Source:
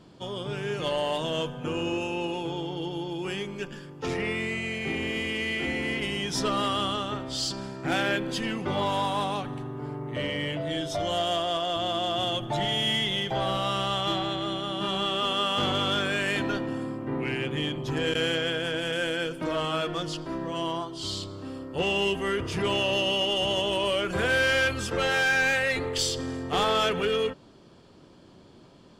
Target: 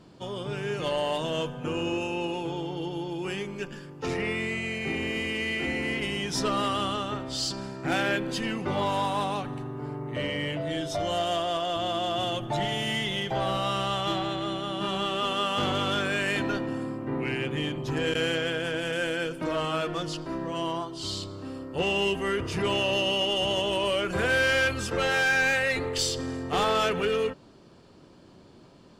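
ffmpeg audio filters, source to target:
ffmpeg -i in.wav -af "bandreject=frequency=3300:width=15" out.wav

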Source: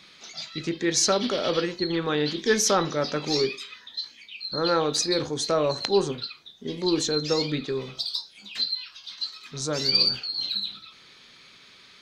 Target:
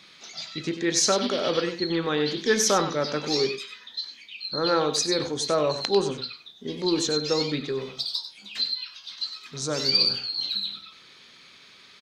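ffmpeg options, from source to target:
ffmpeg -i in.wav -filter_complex "[0:a]lowshelf=frequency=86:gain=-7,asplit=2[link_01][link_02];[link_02]aecho=0:1:96:0.299[link_03];[link_01][link_03]amix=inputs=2:normalize=0" out.wav

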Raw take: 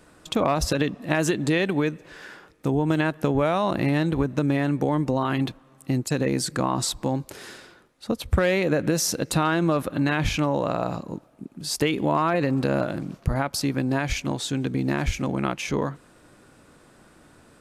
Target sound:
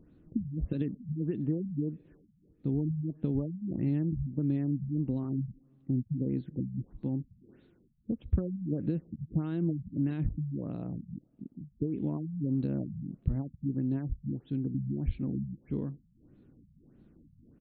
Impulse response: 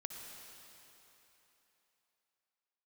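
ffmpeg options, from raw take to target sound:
-af "crystalizer=i=3.5:c=0,acompressor=mode=upward:threshold=-40dB:ratio=2.5,firequalizer=gain_entry='entry(250,0);entry(590,-17);entry(1000,-24)':delay=0.05:min_phase=1,afftfilt=real='re*lt(b*sr/1024,200*pow(4500/200,0.5+0.5*sin(2*PI*1.6*pts/sr)))':imag='im*lt(b*sr/1024,200*pow(4500/200,0.5+0.5*sin(2*PI*1.6*pts/sr)))':win_size=1024:overlap=0.75,volume=-5dB"

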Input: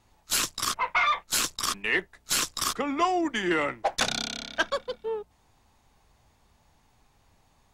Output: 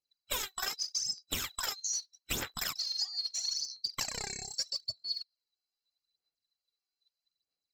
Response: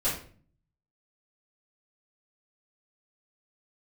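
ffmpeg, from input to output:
-af "afftfilt=real='real(if(lt(b,736),b+184*(1-2*mod(floor(b/184),2)),b),0)':imag='imag(if(lt(b,736),b+184*(1-2*mod(floor(b/184),2)),b),0)':win_size=2048:overlap=0.75,afftdn=noise_reduction=27:noise_floor=-41,aphaser=in_gain=1:out_gain=1:delay=2.7:decay=0.7:speed=0.79:type=sinusoidal,acompressor=threshold=-28dB:ratio=6,volume=-4dB"

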